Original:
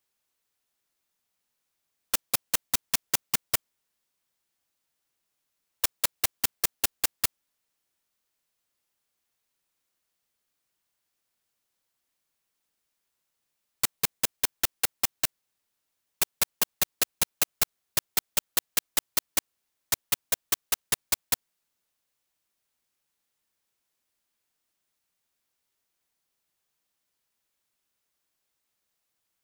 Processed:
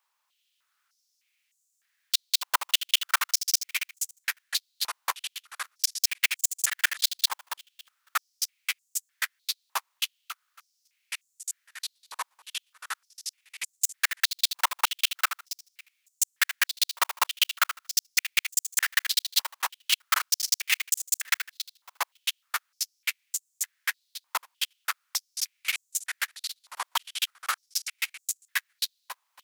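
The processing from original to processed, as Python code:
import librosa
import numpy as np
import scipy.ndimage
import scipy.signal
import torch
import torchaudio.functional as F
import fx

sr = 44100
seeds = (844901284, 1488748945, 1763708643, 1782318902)

p1 = fx.tracing_dist(x, sr, depth_ms=0.25)
p2 = fx.sample_hold(p1, sr, seeds[0], rate_hz=18000.0, jitter_pct=0)
p3 = p1 + (p2 * librosa.db_to_amplitude(-7.5))
p4 = fx.echo_pitch(p3, sr, ms=360, semitones=-5, count=2, db_per_echo=-6.0)
p5 = p4 + fx.echo_feedback(p4, sr, ms=277, feedback_pct=18, wet_db=-10.0, dry=0)
y = fx.filter_held_highpass(p5, sr, hz=3.3, low_hz=990.0, high_hz=7100.0)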